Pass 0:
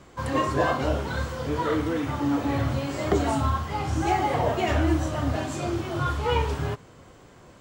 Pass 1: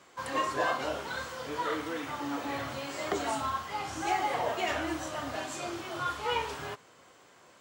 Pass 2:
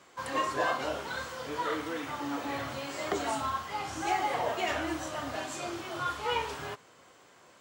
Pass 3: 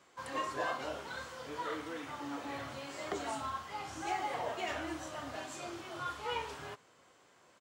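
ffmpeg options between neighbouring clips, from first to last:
-af "highpass=f=900:p=1,volume=0.841"
-af anull
-af "aresample=32000,aresample=44100,volume=0.473"

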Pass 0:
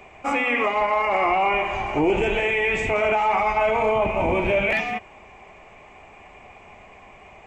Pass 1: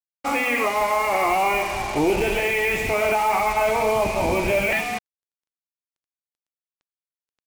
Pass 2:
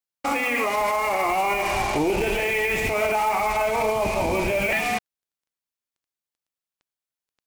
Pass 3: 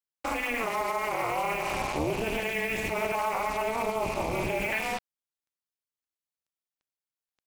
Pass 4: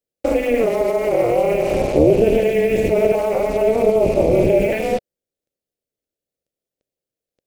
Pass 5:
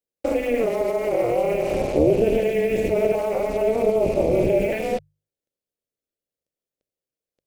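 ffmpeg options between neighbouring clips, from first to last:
-af "acrusher=bits=4:mix=0:aa=0.5"
-af "alimiter=limit=0.119:level=0:latency=1:release=67,volume=1.5"
-af "tremolo=f=230:d=1,volume=0.75"
-af "lowshelf=f=730:t=q:w=3:g=11,volume=1.33"
-af "bandreject=f=50:t=h:w=6,bandreject=f=100:t=h:w=6,bandreject=f=150:t=h:w=6,volume=0.596"

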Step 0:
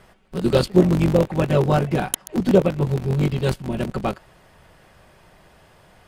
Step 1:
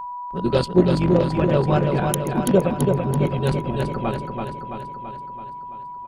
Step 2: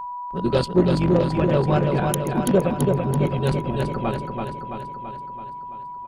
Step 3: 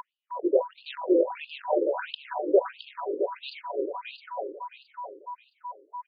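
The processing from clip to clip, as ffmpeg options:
-filter_complex "[0:a]afftdn=nr=21:nf=-41,aeval=exprs='val(0)+0.0447*sin(2*PI*980*n/s)':c=same,asplit=2[s0][s1];[s1]aecho=0:1:333|666|999|1332|1665|1998|2331|2664:0.596|0.345|0.2|0.116|0.0674|0.0391|0.0227|0.0132[s2];[s0][s2]amix=inputs=2:normalize=0,volume=0.794"
-af "asoftclip=type=tanh:threshold=0.422"
-af "afftfilt=real='re*between(b*sr/1024,390*pow(3600/390,0.5+0.5*sin(2*PI*1.5*pts/sr))/1.41,390*pow(3600/390,0.5+0.5*sin(2*PI*1.5*pts/sr))*1.41)':imag='im*between(b*sr/1024,390*pow(3600/390,0.5+0.5*sin(2*PI*1.5*pts/sr))/1.41,390*pow(3600/390,0.5+0.5*sin(2*PI*1.5*pts/sr))*1.41)':win_size=1024:overlap=0.75"

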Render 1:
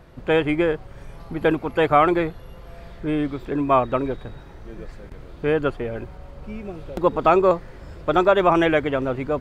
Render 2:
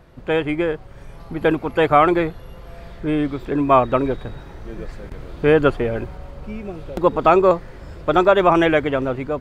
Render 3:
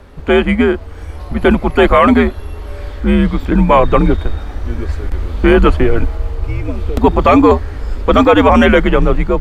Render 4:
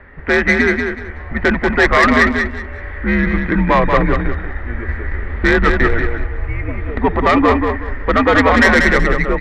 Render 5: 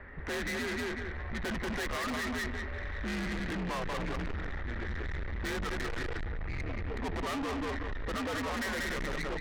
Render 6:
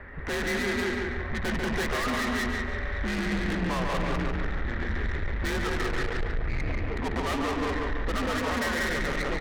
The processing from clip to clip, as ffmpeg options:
-af "dynaudnorm=f=820:g=3:m=3.76,volume=0.891"
-af "afreqshift=-100,asubboost=boost=4:cutoff=61,apsyclip=3.76,volume=0.794"
-filter_complex "[0:a]lowpass=f=1900:t=q:w=9.4,asoftclip=type=tanh:threshold=0.944,asplit=2[s0][s1];[s1]aecho=0:1:187|374|561:0.562|0.141|0.0351[s2];[s0][s2]amix=inputs=2:normalize=0,volume=0.596"
-af "alimiter=limit=0.335:level=0:latency=1:release=38,asoftclip=type=tanh:threshold=0.0473,volume=0.473"
-filter_complex "[0:a]asplit=2[s0][s1];[s1]adelay=142,lowpass=f=3800:p=1,volume=0.708,asplit=2[s2][s3];[s3]adelay=142,lowpass=f=3800:p=1,volume=0.37,asplit=2[s4][s5];[s5]adelay=142,lowpass=f=3800:p=1,volume=0.37,asplit=2[s6][s7];[s7]adelay=142,lowpass=f=3800:p=1,volume=0.37,asplit=2[s8][s9];[s9]adelay=142,lowpass=f=3800:p=1,volume=0.37[s10];[s0][s2][s4][s6][s8][s10]amix=inputs=6:normalize=0,volume=1.68"

